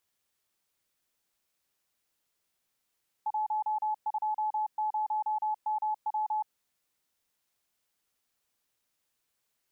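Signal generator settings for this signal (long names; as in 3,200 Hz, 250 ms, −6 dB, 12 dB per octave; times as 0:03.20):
Morse code "120MW" 30 words per minute 857 Hz −27 dBFS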